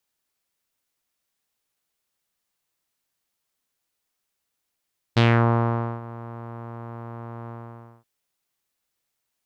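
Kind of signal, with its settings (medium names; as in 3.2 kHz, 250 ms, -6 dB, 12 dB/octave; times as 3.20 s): synth note saw A#2 12 dB/octave, low-pass 1.1 kHz, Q 2.2, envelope 2 oct, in 0.28 s, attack 14 ms, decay 0.83 s, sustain -21 dB, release 0.55 s, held 2.33 s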